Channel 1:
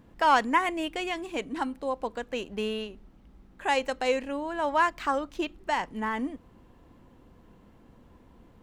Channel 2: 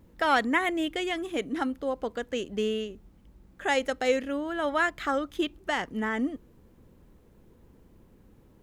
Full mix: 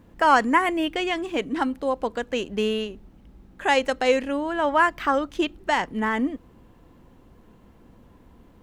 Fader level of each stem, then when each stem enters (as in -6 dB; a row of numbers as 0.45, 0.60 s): +2.0, -2.5 dB; 0.00, 0.00 s